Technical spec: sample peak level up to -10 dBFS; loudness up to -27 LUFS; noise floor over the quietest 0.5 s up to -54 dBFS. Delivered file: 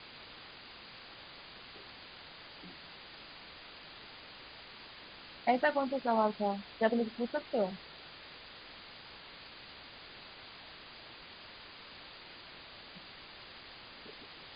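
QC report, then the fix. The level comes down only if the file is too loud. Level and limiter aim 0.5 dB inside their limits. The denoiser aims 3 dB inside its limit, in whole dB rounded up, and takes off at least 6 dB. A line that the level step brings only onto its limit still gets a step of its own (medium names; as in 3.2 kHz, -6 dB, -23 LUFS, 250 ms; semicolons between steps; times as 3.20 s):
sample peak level -16.5 dBFS: pass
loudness -40.0 LUFS: pass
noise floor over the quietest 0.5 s -52 dBFS: fail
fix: noise reduction 6 dB, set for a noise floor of -52 dBFS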